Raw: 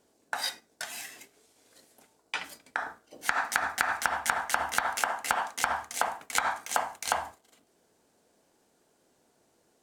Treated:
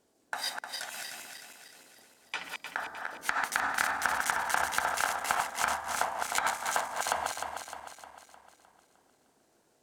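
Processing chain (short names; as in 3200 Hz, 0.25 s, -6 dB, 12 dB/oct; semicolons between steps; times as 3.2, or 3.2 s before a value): regenerating reverse delay 0.153 s, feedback 70%, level -4 dB; gain -3 dB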